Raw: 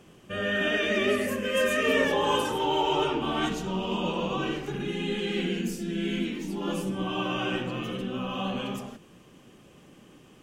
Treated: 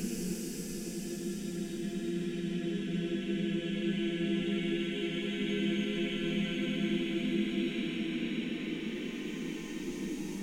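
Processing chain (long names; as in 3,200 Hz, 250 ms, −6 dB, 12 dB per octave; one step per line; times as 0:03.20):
extreme stretch with random phases 14×, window 0.25 s, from 0:05.71
level −3.5 dB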